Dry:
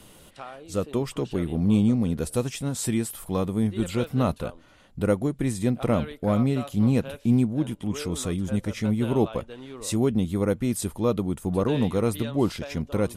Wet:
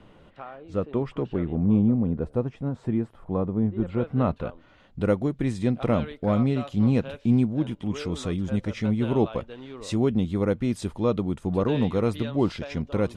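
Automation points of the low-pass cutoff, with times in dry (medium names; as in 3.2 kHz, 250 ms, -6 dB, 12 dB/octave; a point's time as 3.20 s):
1.39 s 2 kHz
1.86 s 1.1 kHz
3.82 s 1.1 kHz
4.17 s 1.9 kHz
5.00 s 4.6 kHz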